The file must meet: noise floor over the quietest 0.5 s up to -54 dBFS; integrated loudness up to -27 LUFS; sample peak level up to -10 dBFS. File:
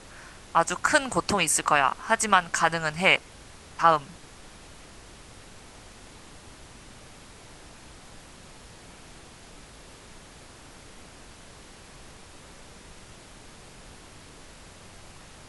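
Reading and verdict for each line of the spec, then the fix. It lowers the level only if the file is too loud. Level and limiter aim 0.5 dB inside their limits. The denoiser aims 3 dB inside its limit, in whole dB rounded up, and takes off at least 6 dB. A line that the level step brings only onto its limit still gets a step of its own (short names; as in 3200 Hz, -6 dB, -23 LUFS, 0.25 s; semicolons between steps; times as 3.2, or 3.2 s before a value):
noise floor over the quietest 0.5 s -48 dBFS: fail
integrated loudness -23.5 LUFS: fail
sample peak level -5.0 dBFS: fail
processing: denoiser 6 dB, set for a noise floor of -48 dBFS; gain -4 dB; limiter -10.5 dBFS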